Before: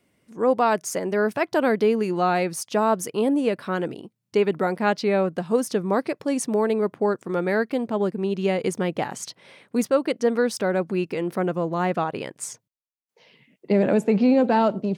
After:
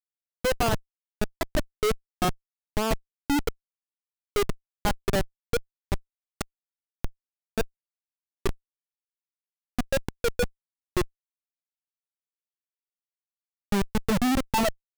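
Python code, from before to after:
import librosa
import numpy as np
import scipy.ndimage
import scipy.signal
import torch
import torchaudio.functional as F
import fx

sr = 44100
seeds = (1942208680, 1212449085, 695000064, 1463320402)

y = fx.bin_expand(x, sr, power=3.0)
y = fx.schmitt(y, sr, flips_db=-23.5)
y = y * 10.0 ** (9.0 / 20.0)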